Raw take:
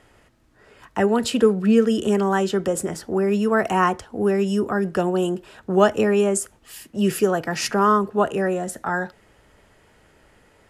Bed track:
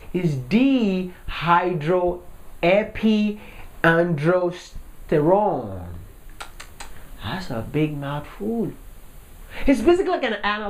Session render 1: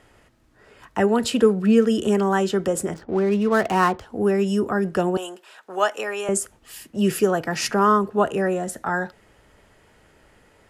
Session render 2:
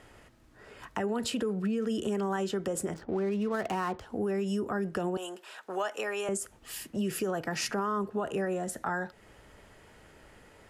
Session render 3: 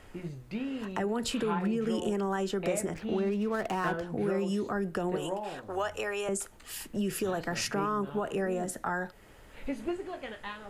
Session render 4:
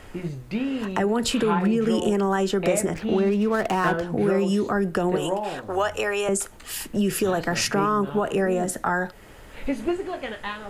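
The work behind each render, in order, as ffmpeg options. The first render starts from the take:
-filter_complex "[0:a]asettb=1/sr,asplit=3[s0][s1][s2];[s0]atrim=end=2.944[s3];[s1]atrim=start=2.94:end=4.01,asetpts=PTS-STARTPTS,afade=t=in:d=0.004:c=qsin,afade=t=out:st=1.066:d=0.004:c=qsin,adynamicsmooth=sensitivity=7.5:basefreq=830[s4];[s2]atrim=start=4.006[s5];[s3][s4]acrossfade=d=0.004:c1=hsin:c2=qsin[s6];[s6][s5]acrossfade=d=0.004:c1=qsin:c2=hsin,asettb=1/sr,asplit=3[s7][s8][s9];[s7]atrim=end=5.174[s10];[s8]atrim=start=5.17:end=6.29,asetpts=PTS-STARTPTS,afade=t=in:d=0.004:c=qsin,afade=t=out:st=1.116:d=0.004:c=qsin,highpass=750[s11];[s9]atrim=start=6.286[s12];[s10][s11]acrossfade=d=0.004:c1=hsin:c2=qsin[s13];[s13][s12]acrossfade=d=0.004:c1=qsin:c2=hsin"
-af "alimiter=limit=0.188:level=0:latency=1:release=53,acompressor=threshold=0.0178:ratio=2"
-filter_complex "[1:a]volume=0.126[s0];[0:a][s0]amix=inputs=2:normalize=0"
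-af "volume=2.66"

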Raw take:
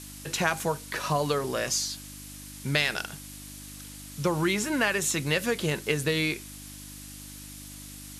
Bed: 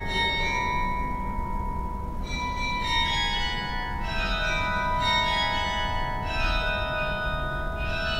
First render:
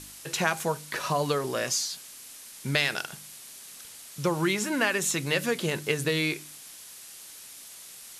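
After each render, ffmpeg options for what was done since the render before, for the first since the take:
-af "bandreject=f=50:t=h:w=4,bandreject=f=100:t=h:w=4,bandreject=f=150:t=h:w=4,bandreject=f=200:t=h:w=4,bandreject=f=250:t=h:w=4,bandreject=f=300:t=h:w=4"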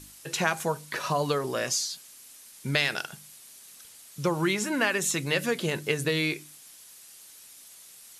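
-af "afftdn=nr=6:nf=-46"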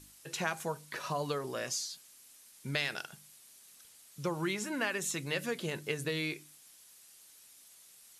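-af "volume=0.398"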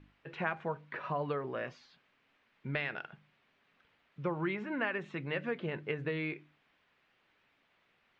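-af "lowpass=f=2500:w=0.5412,lowpass=f=2500:w=1.3066"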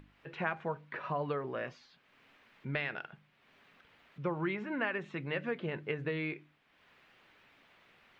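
-af "acompressor=mode=upward:threshold=0.002:ratio=2.5"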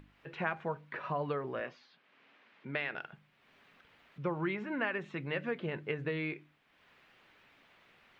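-filter_complex "[0:a]asettb=1/sr,asplit=3[s0][s1][s2];[s0]atrim=end=1.604[s3];[s1]atrim=start=1.6:end=2.95,asetpts=PTS-STARTPTS,afade=t=in:d=0.004:c=qsin,afade=t=out:st=1.346:d=0.004:c=qsin,highpass=200,lowpass=4700[s4];[s2]atrim=start=2.946[s5];[s3][s4]acrossfade=d=0.004:c1=hsin:c2=qsin[s6];[s6][s5]acrossfade=d=0.004:c1=qsin:c2=hsin"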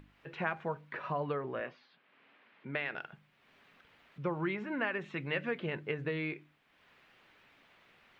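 -filter_complex "[0:a]asettb=1/sr,asplit=3[s0][s1][s2];[s0]atrim=end=1.204[s3];[s1]atrim=start=1.2:end=2.86,asetpts=PTS-STARTPTS,afade=t=in:d=0.004:c=qsin,afade=t=out:st=1.656:d=0.004:c=qsin,lowpass=3900[s4];[s2]atrim=start=2.856[s5];[s3][s4]acrossfade=d=0.004:c1=hsin:c2=qsin[s6];[s6][s5]acrossfade=d=0.004:c1=qsin:c2=hsin,asettb=1/sr,asplit=3[s7][s8][s9];[s7]atrim=end=5.014[s10];[s8]atrim=start=5.01:end=5.75,asetpts=PTS-STARTPTS,afade=t=in:d=0.004:c=qsin,afade=t=out:st=0.736:d=0.004:c=qsin,equalizer=f=2500:t=o:w=1.4:g=3.5[s11];[s9]atrim=start=5.746[s12];[s10][s11]acrossfade=d=0.004:c1=hsin:c2=qsin[s13];[s13][s12]acrossfade=d=0.004:c1=qsin:c2=hsin"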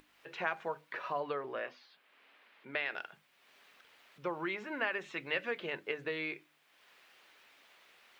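-af "bass=f=250:g=-15,treble=f=4000:g=11,bandreject=f=50:t=h:w=6,bandreject=f=100:t=h:w=6,bandreject=f=150:t=h:w=6,bandreject=f=200:t=h:w=6,bandreject=f=250:t=h:w=6"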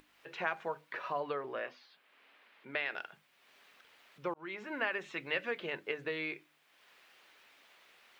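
-filter_complex "[0:a]asplit=2[s0][s1];[s0]atrim=end=4.34,asetpts=PTS-STARTPTS,afade=t=out:st=4.336:d=0.004:c=hsin[s2];[s1]atrim=start=4.34,asetpts=PTS-STARTPTS,afade=t=in:d=0.46:c=qsin[s3];[s2][s3]concat=n=2:v=0:a=1"

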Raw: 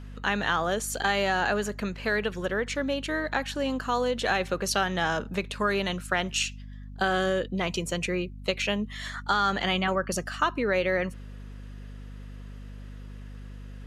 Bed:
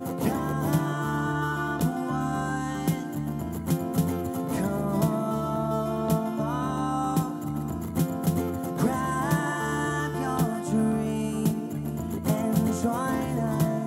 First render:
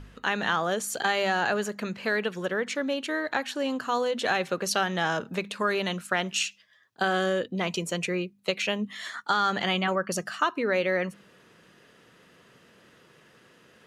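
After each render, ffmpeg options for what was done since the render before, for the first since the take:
-af "bandreject=f=50:t=h:w=4,bandreject=f=100:t=h:w=4,bandreject=f=150:t=h:w=4,bandreject=f=200:t=h:w=4,bandreject=f=250:t=h:w=4"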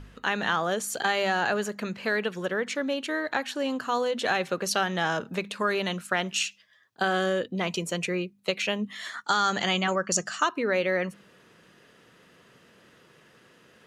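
-filter_complex "[0:a]asettb=1/sr,asplit=3[s0][s1][s2];[s0]atrim=end=9.244[s3];[s1]atrim=start=9.24:end=10.49,asetpts=PTS-STARTPTS,afade=t=in:d=0.004:c=qsin,afade=t=out:st=1.246:d=0.004:c=qsin,lowpass=f=7000:t=q:w=4.1[s4];[s2]atrim=start=10.486[s5];[s3][s4]acrossfade=d=0.004:c1=hsin:c2=qsin[s6];[s6][s5]acrossfade=d=0.004:c1=qsin:c2=hsin"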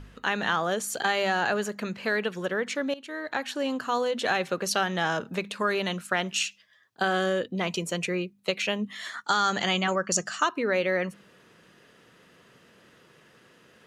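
-filter_complex "[0:a]asplit=2[s0][s1];[s0]atrim=end=2.94,asetpts=PTS-STARTPTS,afade=t=out:st=2.936:d=0.004:c=hsin:silence=0.16788[s2];[s1]atrim=start=2.94,asetpts=PTS-STARTPTS,afade=t=in:d=0.56:silence=0.16788[s3];[s2][s3]concat=n=2:v=0:a=1"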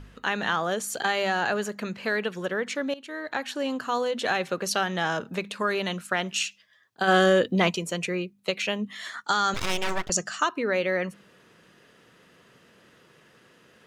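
-filter_complex "[0:a]asplit=3[s0][s1][s2];[s0]afade=t=out:st=7.07:d=0.02[s3];[s1]acontrast=86,afade=t=in:st=7.07:d=0.02,afade=t=out:st=7.69:d=0.02[s4];[s2]afade=t=in:st=7.69:d=0.02[s5];[s3][s4][s5]amix=inputs=3:normalize=0,asettb=1/sr,asplit=3[s6][s7][s8];[s6]atrim=end=9.544[s9];[s7]atrim=start=9.54:end=10.1,asetpts=PTS-STARTPTS,afade=t=in:d=0.004:c=qsin,afade=t=out:st=0.556:d=0.004:c=qsin,aeval=exprs='abs(val(0))':c=same[s10];[s8]atrim=start=10.096[s11];[s9][s10]acrossfade=d=0.004:c1=hsin:c2=qsin[s12];[s12][s11]acrossfade=d=0.004:c1=qsin:c2=hsin"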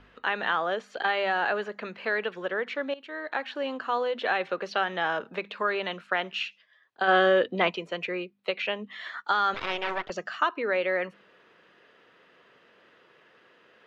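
-filter_complex "[0:a]acrossover=split=5100[s0][s1];[s1]acompressor=threshold=0.002:ratio=4:attack=1:release=60[s2];[s0][s2]amix=inputs=2:normalize=0,acrossover=split=320 4100:gain=0.2 1 0.0708[s3][s4][s5];[s3][s4][s5]amix=inputs=3:normalize=0"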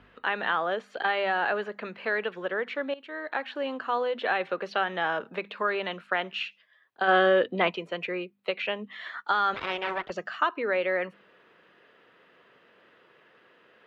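-af "highpass=49,equalizer=f=6100:t=o:w=1:g=-6.5"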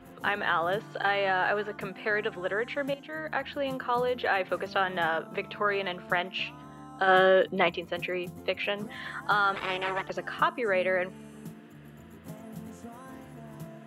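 -filter_complex "[1:a]volume=0.119[s0];[0:a][s0]amix=inputs=2:normalize=0"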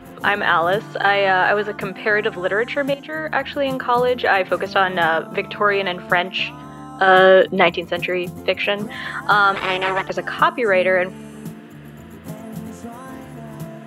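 -af "volume=3.35,alimiter=limit=0.891:level=0:latency=1"

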